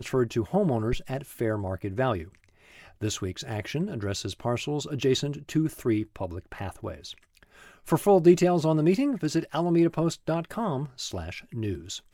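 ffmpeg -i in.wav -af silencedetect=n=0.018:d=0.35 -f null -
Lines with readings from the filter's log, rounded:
silence_start: 2.24
silence_end: 3.01 | silence_duration: 0.78
silence_start: 7.12
silence_end: 7.87 | silence_duration: 0.75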